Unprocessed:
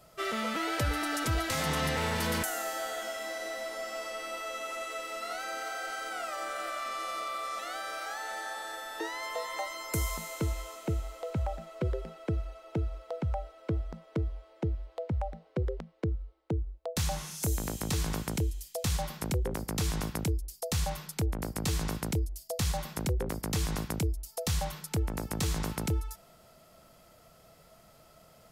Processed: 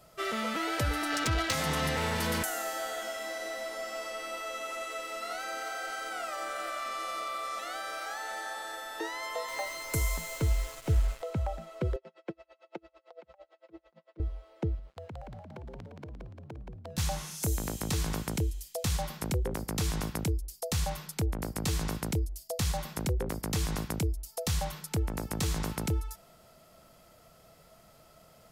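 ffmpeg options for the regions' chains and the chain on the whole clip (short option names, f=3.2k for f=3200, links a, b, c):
-filter_complex "[0:a]asettb=1/sr,asplit=3[a][b][c];[a]atrim=end=1.104[d];[b]atrim=start=1.1:end=1.53,asetpts=PTS-STARTPTS,afade=t=in:d=0.004:c=qsin,afade=t=out:st=0.426:d=0.004:c=qsin,highshelf=f=2.5k:g=10.5,adynamicsmooth=sensitivity=3:basefreq=2.1k[e];[c]atrim=start=1.526[f];[d][e]acrossfade=d=0.004:c1=hsin:c2=qsin[g];[g][f]acrossfade=d=0.004:c1=qsin:c2=hsin,asettb=1/sr,asplit=3[h][i][j];[h]atrim=end=9.484[k];[i]atrim=start=9.48:end=11.22,asetpts=PTS-STARTPTS,afade=t=in:d=0.004:c=qsin,afade=t=out:st=1.736:d=0.004:c=qsin,acrusher=bits=6:mix=0:aa=0.5,asubboost=boost=10.5:cutoff=85,aecho=1:1:7.2:0.39,atrim=end_sample=76734[l];[j]atrim=start=11.216[m];[k][l]acrossfade=d=0.004:c1=hsin:c2=qsin[n];[n][m]acrossfade=d=0.004:c1=qsin:c2=hsin,asettb=1/sr,asplit=3[o][p][q];[o]atrim=end=11.964[r];[p]atrim=start=11.96:end=14.2,asetpts=PTS-STARTPTS,afade=t=in:d=0.004:c=qsin,afade=t=out:st=2.236:d=0.004:c=qsin,highpass=360,lowpass=4.6k,aecho=1:1:5.7:0.52,atrim=end_sample=98784,aeval=exprs='val(0)*pow(10,-32*(0.5-0.5*cos(2*PI*8.9*n/s))/20)':c=same[s];[q]atrim=start=14.196[t];[r][s]acrossfade=d=0.004:c1=hsin:c2=qsin[u];[u][t]acrossfade=d=0.004:c1=qsin:c2=hsin,asettb=1/sr,asplit=3[v][w][x];[v]atrim=end=14.794[y];[w]atrim=start=14.79:end=16.98,asetpts=PTS-STARTPTS,afade=t=in:d=0.004:c=qsin,afade=t=out:st=2.186:d=0.004:c=qsin,aeval=exprs='sgn(val(0))*max(abs(val(0))-0.00126,0)':c=same,acompressor=threshold=-41dB:ratio=10:attack=3.2:release=140:knee=1:detection=peak,asplit=9[z][aa][ab][ac][ad][ae][af][ag][ah];[aa]adelay=174,afreqshift=42,volume=-4dB[ai];[ab]adelay=348,afreqshift=84,volume=-8.6dB[aj];[ac]adelay=522,afreqshift=126,volume=-13.2dB[ak];[ad]adelay=696,afreqshift=168,volume=-17.7dB[al];[ae]adelay=870,afreqshift=210,volume=-22.3dB[am];[af]adelay=1044,afreqshift=252,volume=-26.9dB[an];[ag]adelay=1218,afreqshift=294,volume=-31.5dB[ao];[ah]adelay=1392,afreqshift=336,volume=-36.1dB[ap];[z][ai][aj][ak][al][am][an][ao][ap]amix=inputs=9:normalize=0,atrim=end_sample=96579[aq];[x]atrim=start=16.976[ar];[y][aq]acrossfade=d=0.004:c1=hsin:c2=qsin[as];[as][ar]acrossfade=d=0.004:c1=qsin:c2=hsin"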